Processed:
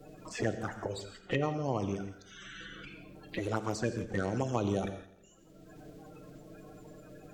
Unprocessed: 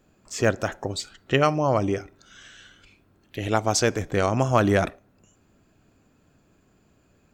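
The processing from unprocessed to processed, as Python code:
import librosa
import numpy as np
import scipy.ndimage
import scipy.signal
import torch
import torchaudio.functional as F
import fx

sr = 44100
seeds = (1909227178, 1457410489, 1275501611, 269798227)

p1 = fx.spec_quant(x, sr, step_db=30)
p2 = fx.high_shelf(p1, sr, hz=3500.0, db=-3.5)
p3 = fx.env_flanger(p2, sr, rest_ms=6.7, full_db=-17.0)
p4 = p3 + fx.echo_feedback(p3, sr, ms=84, feedback_pct=49, wet_db=-20.0, dry=0)
p5 = fx.rev_gated(p4, sr, seeds[0], gate_ms=190, shape='flat', drr_db=9.5)
p6 = fx.band_squash(p5, sr, depth_pct=70)
y = p6 * librosa.db_to_amplitude(-7.0)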